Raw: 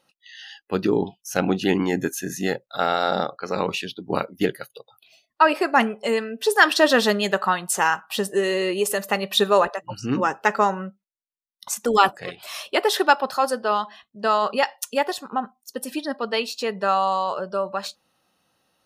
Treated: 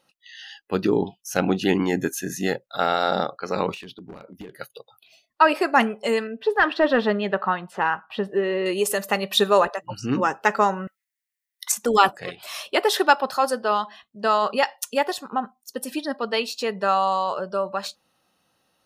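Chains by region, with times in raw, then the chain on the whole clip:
3.74–4.59 s: treble shelf 2.3 kHz -7.5 dB + compression 10:1, threshold -33 dBFS + hard clipper -33 dBFS
6.27–8.66 s: overload inside the chain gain 8.5 dB + distance through air 400 m
10.87–11.72 s: resonant high-pass 1.9 kHz, resonance Q 7.2 + treble shelf 5.3 kHz +11 dB
whole clip: none

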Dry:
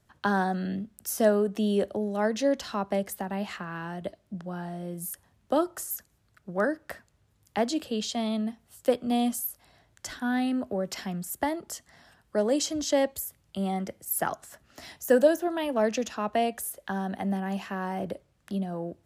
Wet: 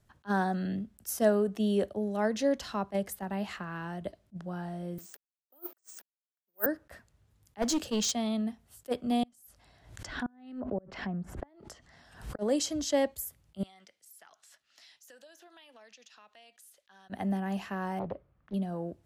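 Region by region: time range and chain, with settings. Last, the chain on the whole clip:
4.98–6.66 s: send-on-delta sampling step -49 dBFS + high-pass 270 Hz 24 dB/octave + careless resampling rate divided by 3×, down filtered, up zero stuff
7.62–8.12 s: peaking EQ 6.3 kHz +9.5 dB 0.51 oct + waveshaping leveller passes 1 + hard clipper -22.5 dBFS
9.23–12.39 s: inverted gate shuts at -21 dBFS, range -32 dB + low-pass that closes with the level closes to 1.1 kHz, closed at -32 dBFS + swell ahead of each attack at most 90 dB/s
13.63–17.10 s: band-pass filter 3.9 kHz, Q 1.1 + compression 5:1, threshold -50 dBFS
17.99–18.54 s: low-pass 1.9 kHz + peaking EQ 1.2 kHz +5.5 dB 0.37 oct + loudspeaker Doppler distortion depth 0.41 ms
whole clip: bass shelf 81 Hz +8.5 dB; attacks held to a fixed rise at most 530 dB/s; trim -3 dB

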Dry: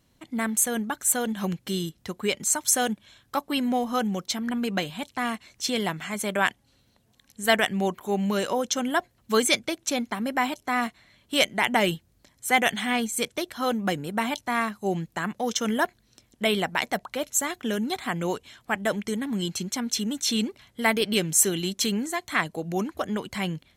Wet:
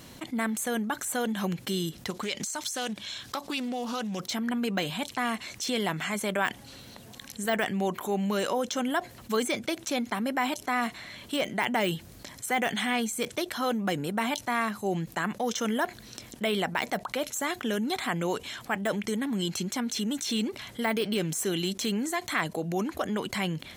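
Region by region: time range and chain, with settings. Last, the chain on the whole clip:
2.10–4.20 s: compression 5:1, threshold -33 dBFS + peaking EQ 4.9 kHz +9.5 dB 1.7 oct + loudspeaker Doppler distortion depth 0.18 ms
whole clip: de-esser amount 65%; bass shelf 83 Hz -12 dB; level flattener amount 50%; trim -5 dB

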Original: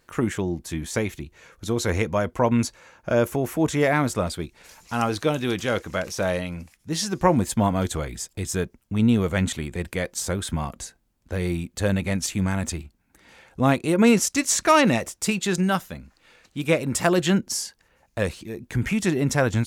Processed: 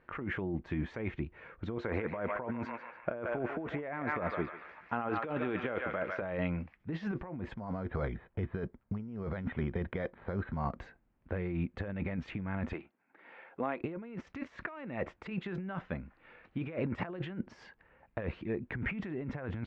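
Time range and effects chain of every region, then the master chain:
1.78–6.22 s: high-pass 530 Hz 6 dB/octave + tilt EQ -2 dB/octave + band-passed feedback delay 145 ms, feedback 57%, band-pass 1.9 kHz, level -7 dB
7.54–10.77 s: low-pass 2.3 kHz + careless resampling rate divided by 8×, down filtered, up hold + band-stop 310 Hz, Q 7.3
12.73–13.81 s: band-pass 370–5200 Hz + compression 5:1, threshold -29 dBFS
whole clip: bass shelf 110 Hz -3.5 dB; compressor with a negative ratio -30 dBFS, ratio -1; low-pass 2.3 kHz 24 dB/octave; trim -6 dB

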